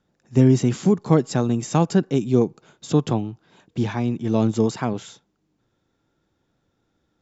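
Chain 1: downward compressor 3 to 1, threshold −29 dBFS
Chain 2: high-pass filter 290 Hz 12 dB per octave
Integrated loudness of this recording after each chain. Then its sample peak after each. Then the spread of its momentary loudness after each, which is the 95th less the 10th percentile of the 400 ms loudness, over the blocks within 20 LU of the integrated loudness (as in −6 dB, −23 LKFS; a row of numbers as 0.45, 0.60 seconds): −32.0, −25.0 LKFS; −13.5, −6.5 dBFS; 9, 11 LU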